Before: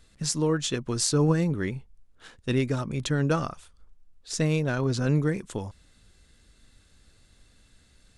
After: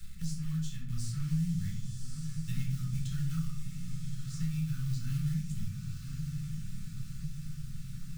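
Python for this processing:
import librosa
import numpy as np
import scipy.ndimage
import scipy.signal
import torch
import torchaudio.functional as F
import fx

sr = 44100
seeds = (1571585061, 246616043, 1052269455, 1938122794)

p1 = fx.high_shelf(x, sr, hz=5500.0, db=5.0)
p2 = fx.rider(p1, sr, range_db=10, speed_s=2.0)
p3 = fx.quant_companded(p2, sr, bits=4)
p4 = scipy.signal.sosfilt(scipy.signal.ellip(3, 1.0, 40, [200.0, 1200.0], 'bandstop', fs=sr, output='sos'), p3)
p5 = fx.tone_stack(p4, sr, knobs='10-0-1')
p6 = p5 + fx.echo_diffused(p5, sr, ms=1110, feedback_pct=58, wet_db=-11, dry=0)
p7 = fx.room_shoebox(p6, sr, seeds[0], volume_m3=640.0, walls='furnished', distance_m=4.2)
y = fx.band_squash(p7, sr, depth_pct=70)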